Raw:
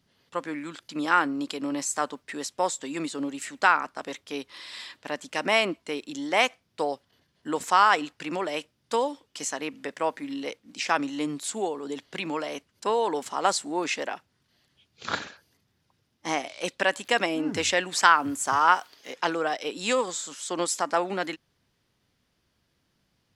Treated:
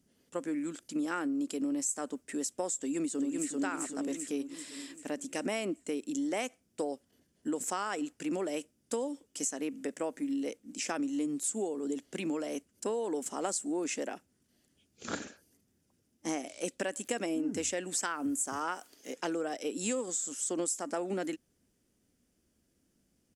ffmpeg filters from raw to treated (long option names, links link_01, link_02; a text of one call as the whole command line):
ffmpeg -i in.wav -filter_complex "[0:a]asplit=2[link_01][link_02];[link_02]afade=type=in:start_time=2.79:duration=0.01,afade=type=out:start_time=3.54:duration=0.01,aecho=0:1:390|780|1170|1560|1950|2340|2730:0.841395|0.420698|0.210349|0.105174|0.0525872|0.0262936|0.0131468[link_03];[link_01][link_03]amix=inputs=2:normalize=0,equalizer=frequency=125:width_type=o:width=1:gain=-8,equalizer=frequency=250:width_type=o:width=1:gain=6,equalizer=frequency=1000:width_type=o:width=1:gain=-11,equalizer=frequency=2000:width_type=o:width=1:gain=-5,equalizer=frequency=4000:width_type=o:width=1:gain=-12,equalizer=frequency=8000:width_type=o:width=1:gain=8,acompressor=threshold=-30dB:ratio=6" out.wav